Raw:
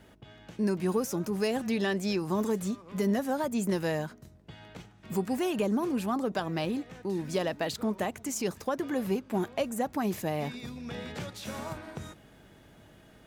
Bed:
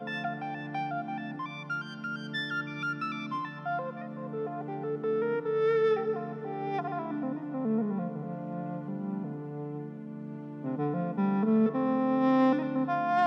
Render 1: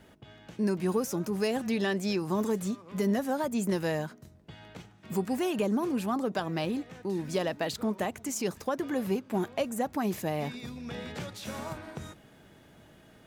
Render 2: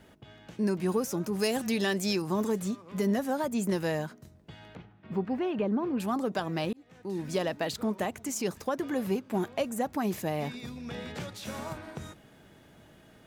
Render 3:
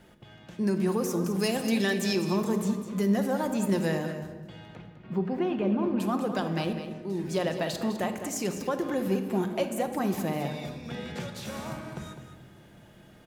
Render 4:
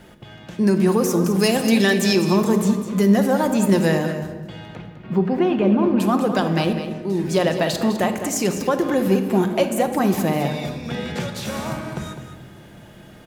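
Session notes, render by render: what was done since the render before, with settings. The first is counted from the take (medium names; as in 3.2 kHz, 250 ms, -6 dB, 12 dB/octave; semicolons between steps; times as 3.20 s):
de-hum 50 Hz, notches 2
1.39–2.22 s: treble shelf 4.3 kHz +9.5 dB; 4.75–6.00 s: distance through air 340 m; 6.73–7.26 s: fade in linear
delay 205 ms -11 dB; simulated room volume 1500 m³, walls mixed, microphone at 0.89 m
trim +9.5 dB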